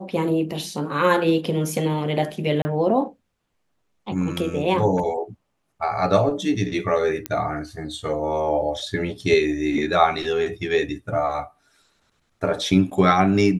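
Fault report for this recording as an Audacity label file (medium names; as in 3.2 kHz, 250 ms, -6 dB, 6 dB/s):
2.620000	2.650000	dropout 30 ms
7.260000	7.260000	pop -9 dBFS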